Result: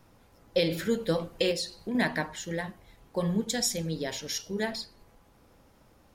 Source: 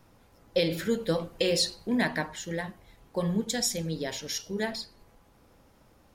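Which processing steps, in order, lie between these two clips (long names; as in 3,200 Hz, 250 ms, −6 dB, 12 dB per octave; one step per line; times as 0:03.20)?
0:01.51–0:01.95: downward compressor 4 to 1, threshold −31 dBFS, peak gain reduction 8.5 dB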